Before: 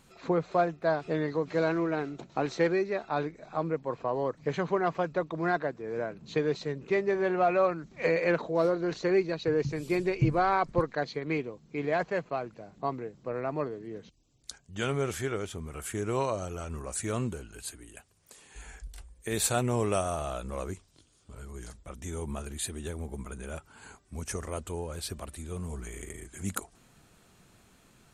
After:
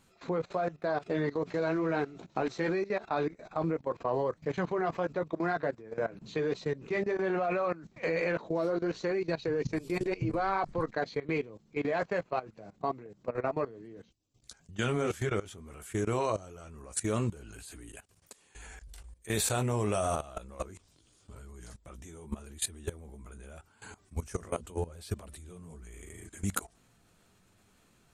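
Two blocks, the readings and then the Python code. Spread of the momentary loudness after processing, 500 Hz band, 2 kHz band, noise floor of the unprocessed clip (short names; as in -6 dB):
19 LU, -2.5 dB, -2.5 dB, -62 dBFS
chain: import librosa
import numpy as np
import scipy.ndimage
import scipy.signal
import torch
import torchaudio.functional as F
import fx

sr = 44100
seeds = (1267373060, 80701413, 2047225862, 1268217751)

y = fx.chorus_voices(x, sr, voices=6, hz=0.83, base_ms=14, depth_ms=4.8, mix_pct=30)
y = fx.level_steps(y, sr, step_db=18)
y = F.gain(torch.from_numpy(y), 6.5).numpy()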